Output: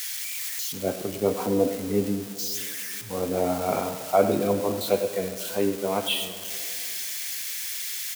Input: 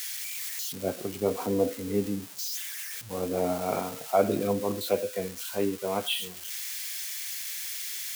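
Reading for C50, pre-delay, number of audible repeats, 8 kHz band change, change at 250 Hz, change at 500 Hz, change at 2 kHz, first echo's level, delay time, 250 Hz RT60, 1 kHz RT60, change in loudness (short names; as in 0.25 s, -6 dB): 9.5 dB, 30 ms, 1, +3.5 dB, +3.5 dB, +3.5 dB, +3.5 dB, -14.0 dB, 0.101 s, 2.8 s, 2.8 s, +3.5 dB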